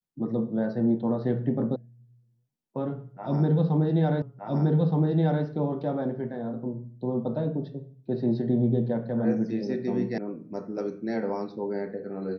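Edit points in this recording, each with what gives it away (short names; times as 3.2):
1.76 sound cut off
4.22 repeat of the last 1.22 s
10.18 sound cut off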